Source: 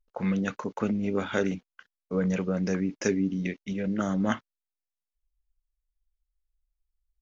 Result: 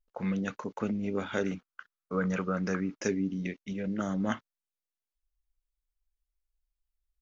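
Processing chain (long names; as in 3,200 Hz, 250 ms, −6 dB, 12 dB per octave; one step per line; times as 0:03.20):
0:01.47–0:02.98: parametric band 1,300 Hz +13 dB 0.65 octaves
level −4 dB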